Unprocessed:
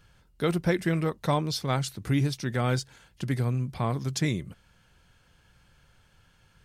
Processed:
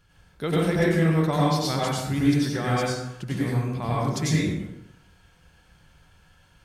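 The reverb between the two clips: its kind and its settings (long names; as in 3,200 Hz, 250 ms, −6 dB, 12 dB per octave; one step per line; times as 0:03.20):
dense smooth reverb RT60 0.83 s, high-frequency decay 0.65×, pre-delay 80 ms, DRR −6.5 dB
level −3 dB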